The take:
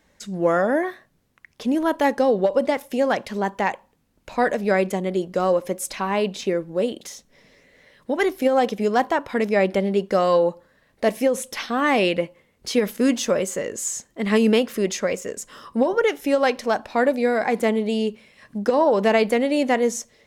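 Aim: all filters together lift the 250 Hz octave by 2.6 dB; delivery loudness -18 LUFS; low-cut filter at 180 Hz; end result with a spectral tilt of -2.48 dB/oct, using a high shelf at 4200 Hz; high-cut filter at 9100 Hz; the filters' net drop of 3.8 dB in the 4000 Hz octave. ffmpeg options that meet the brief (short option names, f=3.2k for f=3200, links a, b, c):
-af "highpass=180,lowpass=9.1k,equalizer=f=250:t=o:g=4.5,equalizer=f=4k:t=o:g=-8.5,highshelf=f=4.2k:g=5,volume=3dB"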